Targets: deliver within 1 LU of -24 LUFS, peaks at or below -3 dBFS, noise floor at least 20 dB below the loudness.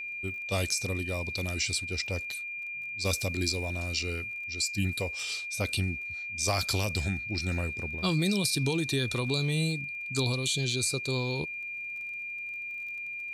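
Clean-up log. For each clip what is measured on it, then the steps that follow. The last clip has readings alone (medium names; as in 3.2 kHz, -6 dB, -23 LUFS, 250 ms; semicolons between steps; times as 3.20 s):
tick rate 25 per s; steady tone 2.4 kHz; tone level -35 dBFS; loudness -30.5 LUFS; peak level -15.0 dBFS; loudness target -24.0 LUFS
-> de-click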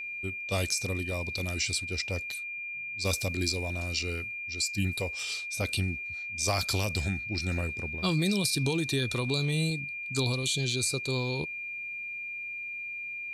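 tick rate 0 per s; steady tone 2.4 kHz; tone level -35 dBFS
-> band-stop 2.4 kHz, Q 30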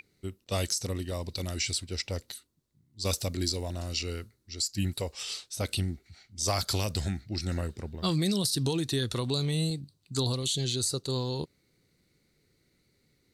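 steady tone not found; loudness -31.0 LUFS; peak level -15.5 dBFS; loudness target -24.0 LUFS
-> trim +7 dB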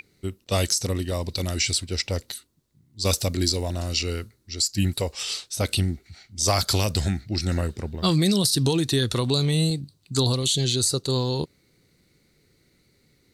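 loudness -24.0 LUFS; peak level -8.5 dBFS; noise floor -64 dBFS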